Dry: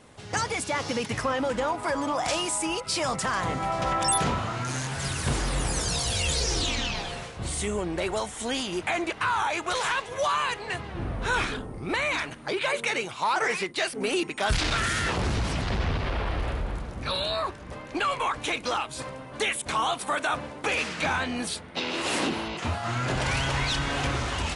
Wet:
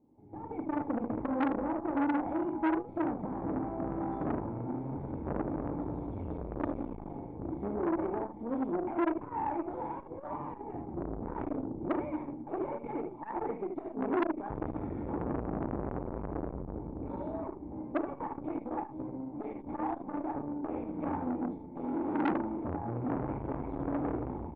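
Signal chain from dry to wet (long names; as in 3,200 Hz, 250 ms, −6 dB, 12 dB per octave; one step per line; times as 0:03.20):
automatic gain control gain up to 13.5 dB
harmonic generator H 8 −20 dB, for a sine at −2 dBFS
formant resonators in series u
on a send: ambience of single reflections 35 ms −7 dB, 76 ms −5 dB
on the sum: saturating transformer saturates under 1,100 Hz
level −4.5 dB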